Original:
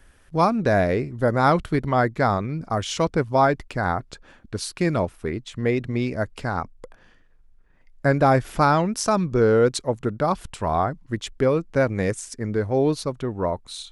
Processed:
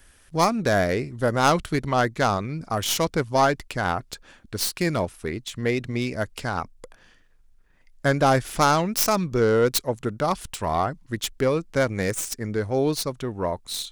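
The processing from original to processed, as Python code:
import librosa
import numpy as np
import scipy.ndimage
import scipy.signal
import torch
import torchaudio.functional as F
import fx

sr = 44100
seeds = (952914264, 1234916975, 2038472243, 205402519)

y = fx.tracing_dist(x, sr, depth_ms=0.17)
y = fx.high_shelf(y, sr, hz=2700.0, db=11.0)
y = y * 10.0 ** (-2.5 / 20.0)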